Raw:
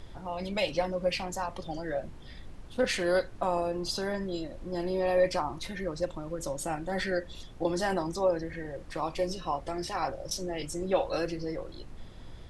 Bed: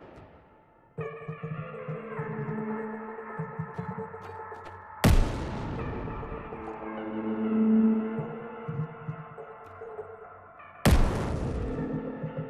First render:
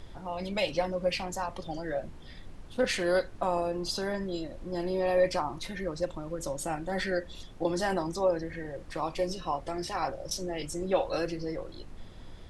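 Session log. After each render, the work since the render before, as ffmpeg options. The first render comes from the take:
-af "bandreject=f=60:t=h:w=4,bandreject=f=120:t=h:w=4"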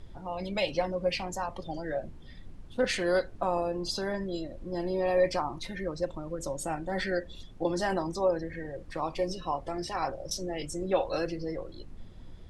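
-af "afftdn=nr=7:nf=-47"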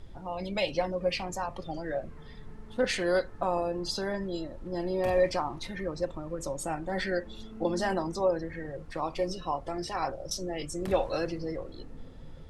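-filter_complex "[1:a]volume=-19.5dB[a];[0:a][a]amix=inputs=2:normalize=0"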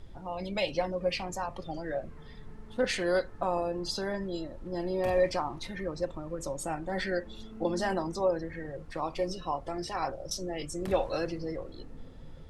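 -af "volume=-1dB"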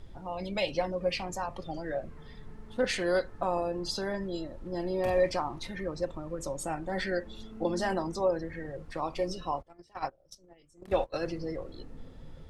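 -filter_complex "[0:a]asplit=3[a][b][c];[a]afade=t=out:st=9.61:d=0.02[d];[b]agate=range=-25dB:threshold=-32dB:ratio=16:release=100:detection=peak,afade=t=in:st=9.61:d=0.02,afade=t=out:st=11.22:d=0.02[e];[c]afade=t=in:st=11.22:d=0.02[f];[d][e][f]amix=inputs=3:normalize=0"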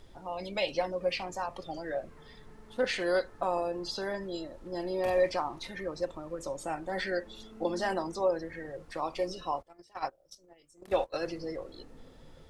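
-filter_complex "[0:a]acrossover=split=4500[a][b];[b]acompressor=threshold=-51dB:ratio=4:attack=1:release=60[c];[a][c]amix=inputs=2:normalize=0,bass=f=250:g=-8,treble=f=4k:g=4"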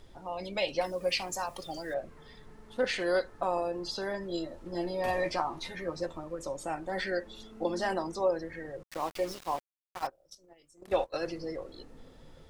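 -filter_complex "[0:a]asettb=1/sr,asplit=3[a][b][c];[a]atrim=end=0.814[d];[b]atrim=start=0.81:end=1.94,asetpts=PTS-STARTPTS,afade=t=in:d=0.004:c=qsin,afade=t=out:st=1.126:d=0.004:c=qsin,aemphasis=mode=production:type=75fm[e];[c]atrim=start=1.936[f];[d][e]acrossfade=d=0.004:c1=hsin:c2=qsin[g];[g][f]acrossfade=d=0.004:c1=qsin:c2=hsin,asettb=1/sr,asplit=3[h][i][j];[h]atrim=end=4.294[k];[i]atrim=start=4.29:end=6.24,asetpts=PTS-STARTPTS,afade=t=in:d=0.004:c=qsin,afade=t=out:st=1.946:d=0.004:c=qsin,asplit=2[l][m];[m]adelay=12,volume=-3.5dB[n];[l][n]amix=inputs=2:normalize=0,atrim=end_sample=85995[o];[j]atrim=start=6.236[p];[k][o]acrossfade=d=0.004:c1=hsin:c2=qsin[q];[q][p]acrossfade=d=0.004:c1=qsin:c2=hsin,asettb=1/sr,asplit=3[r][s][t];[r]atrim=end=8.834[u];[s]atrim=start=8.83:end=10.07,asetpts=PTS-STARTPTS,afade=t=in:d=0.004:c=qsin,afade=t=out:st=1.236:d=0.004:c=qsin,aeval=exprs='val(0)*gte(abs(val(0)),0.01)':c=same[v];[t]atrim=start=10.066[w];[u][v]acrossfade=d=0.004:c1=hsin:c2=qsin[x];[x][w]acrossfade=d=0.004:c1=qsin:c2=hsin"

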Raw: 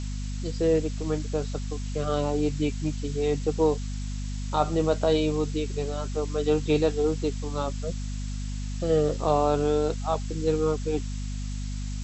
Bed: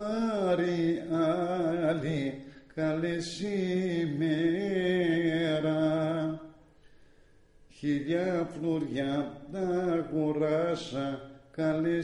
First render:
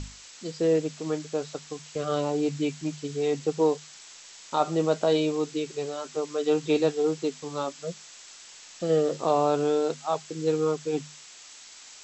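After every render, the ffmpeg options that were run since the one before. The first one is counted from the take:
-af "bandreject=f=50:t=h:w=6,bandreject=f=100:t=h:w=6,bandreject=f=150:t=h:w=6,bandreject=f=200:t=h:w=6,bandreject=f=250:t=h:w=6"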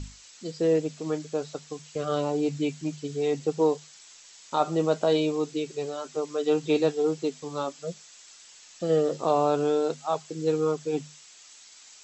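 -af "afftdn=nr=6:nf=-48"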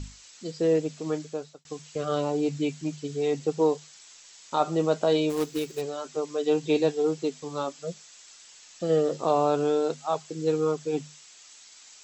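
-filter_complex "[0:a]asplit=3[a][b][c];[a]afade=t=out:st=5.29:d=0.02[d];[b]acrusher=bits=3:mode=log:mix=0:aa=0.000001,afade=t=in:st=5.29:d=0.02,afade=t=out:st=5.8:d=0.02[e];[c]afade=t=in:st=5.8:d=0.02[f];[d][e][f]amix=inputs=3:normalize=0,asettb=1/sr,asplit=3[g][h][i];[g]atrim=end=6.314[j];[h]atrim=start=6.31:end=6.93,asetpts=PTS-STARTPTS,afade=t=in:d=0.004:c=qsin,afade=t=out:st=0.616:d=0.004:c=qsin,bandreject=f=1.3k:w=5.6[k];[i]atrim=start=6.926[l];[j][k]acrossfade=d=0.004:c1=hsin:c2=qsin[m];[m][l]acrossfade=d=0.004:c1=qsin:c2=hsin,asplit=2[n][o];[n]atrim=end=1.65,asetpts=PTS-STARTPTS,afade=t=out:st=1.2:d=0.45[p];[o]atrim=start=1.65,asetpts=PTS-STARTPTS,afade=t=in:d=0.004:c=hsin[q];[p][q]concat=n=2:v=0:a=1"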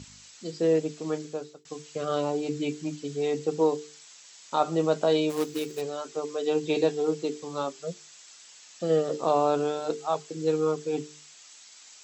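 -af "highpass=100,bandreject=f=50:t=h:w=6,bandreject=f=100:t=h:w=6,bandreject=f=150:t=h:w=6,bandreject=f=200:t=h:w=6,bandreject=f=250:t=h:w=6,bandreject=f=300:t=h:w=6,bandreject=f=350:t=h:w=6,bandreject=f=400:t=h:w=6,bandreject=f=450:t=h:w=6"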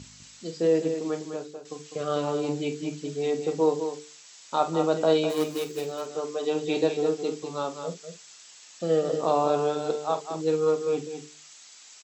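-filter_complex "[0:a]asplit=2[a][b];[b]adelay=47,volume=-11.5dB[c];[a][c]amix=inputs=2:normalize=0,aecho=1:1:203:0.398"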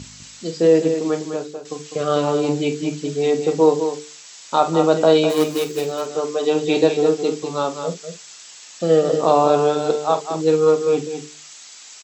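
-af "volume=8.5dB,alimiter=limit=-3dB:level=0:latency=1"

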